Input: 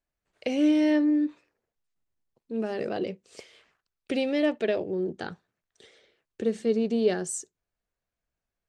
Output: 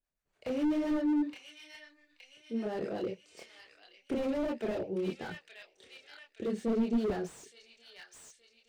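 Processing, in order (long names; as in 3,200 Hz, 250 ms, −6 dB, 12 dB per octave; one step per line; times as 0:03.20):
two-band tremolo in antiphase 7.5 Hz, depth 70%, crossover 560 Hz
delay with a high-pass on its return 870 ms, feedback 48%, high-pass 2,000 Hz, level −6 dB
multi-voice chorus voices 4, 0.92 Hz, delay 28 ms, depth 3 ms
slew-rate limiting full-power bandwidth 12 Hz
level +2 dB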